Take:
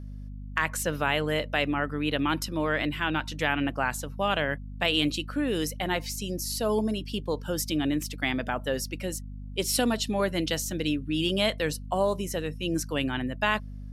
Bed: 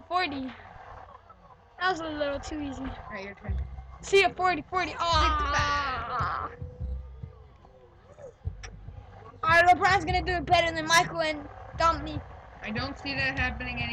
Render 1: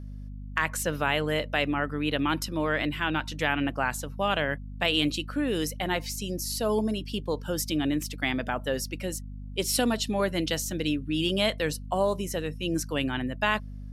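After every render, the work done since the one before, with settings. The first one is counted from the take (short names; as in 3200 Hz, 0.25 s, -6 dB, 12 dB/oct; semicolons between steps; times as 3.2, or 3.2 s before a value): nothing audible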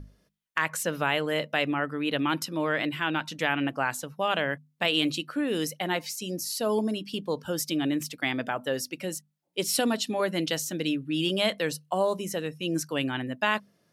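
notches 50/100/150/200/250 Hz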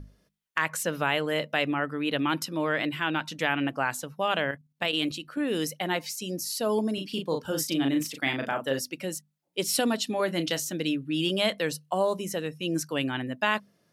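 4.51–5.41 level quantiser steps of 9 dB; 6.94–8.79 doubler 37 ms -5 dB; 10.25–10.65 doubler 29 ms -13 dB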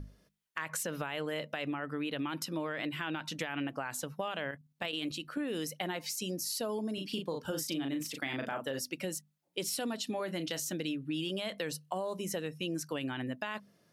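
limiter -19.5 dBFS, peak gain reduction 9 dB; compressor 5:1, threshold -33 dBFS, peak gain reduction 9 dB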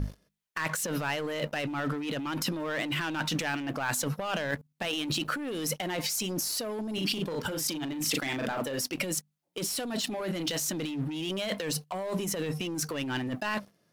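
sample leveller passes 3; negative-ratio compressor -32 dBFS, ratio -1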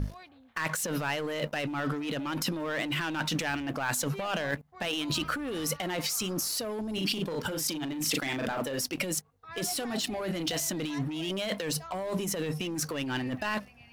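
add bed -23 dB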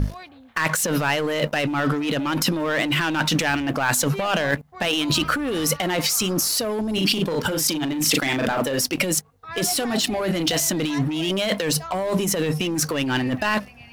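gain +9.5 dB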